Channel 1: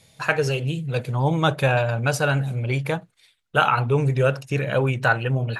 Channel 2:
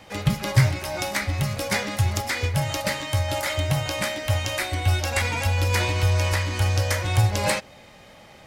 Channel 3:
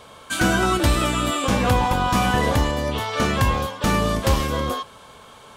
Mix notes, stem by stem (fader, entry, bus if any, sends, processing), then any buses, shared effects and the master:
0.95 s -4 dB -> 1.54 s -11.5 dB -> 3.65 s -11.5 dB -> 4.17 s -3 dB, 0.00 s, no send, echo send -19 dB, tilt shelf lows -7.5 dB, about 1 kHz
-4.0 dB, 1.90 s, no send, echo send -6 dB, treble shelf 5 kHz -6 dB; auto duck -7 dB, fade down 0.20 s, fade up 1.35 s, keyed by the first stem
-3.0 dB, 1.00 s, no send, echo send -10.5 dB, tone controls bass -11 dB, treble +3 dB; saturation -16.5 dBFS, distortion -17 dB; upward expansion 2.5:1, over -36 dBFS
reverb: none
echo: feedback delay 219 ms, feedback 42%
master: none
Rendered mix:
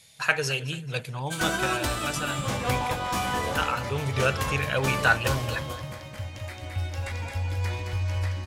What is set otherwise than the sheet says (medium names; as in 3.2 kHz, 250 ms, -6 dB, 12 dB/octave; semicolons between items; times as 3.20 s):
stem 2 -4.0 dB -> -12.0 dB; master: extra bass shelf 170 Hz +5 dB